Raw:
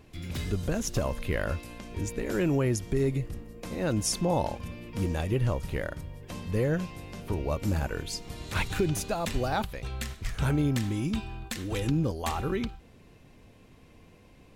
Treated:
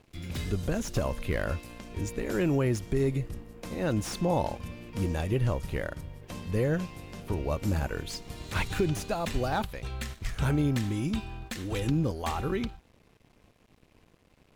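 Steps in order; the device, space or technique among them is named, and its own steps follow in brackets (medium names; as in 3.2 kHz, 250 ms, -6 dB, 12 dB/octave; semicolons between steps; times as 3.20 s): early transistor amplifier (crossover distortion -55.5 dBFS; slew-rate limiter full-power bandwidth 97 Hz)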